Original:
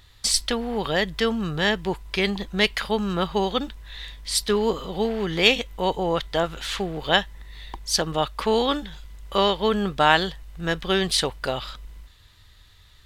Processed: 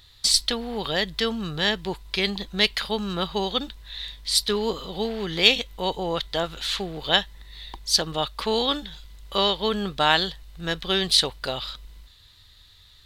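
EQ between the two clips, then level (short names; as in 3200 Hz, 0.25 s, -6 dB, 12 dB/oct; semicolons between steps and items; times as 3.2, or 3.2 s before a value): bell 4000 Hz +9 dB 0.68 oct; high shelf 8700 Hz +5 dB; -3.5 dB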